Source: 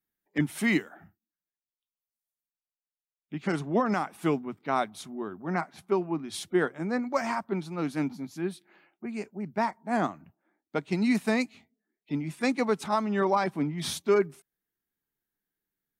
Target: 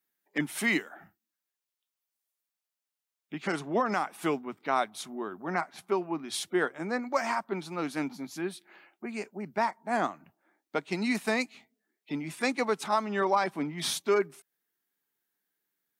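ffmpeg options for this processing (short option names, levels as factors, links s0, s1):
-filter_complex "[0:a]highpass=f=480:p=1,asplit=2[s0][s1];[s1]acompressor=threshold=0.00891:ratio=6,volume=0.944[s2];[s0][s2]amix=inputs=2:normalize=0"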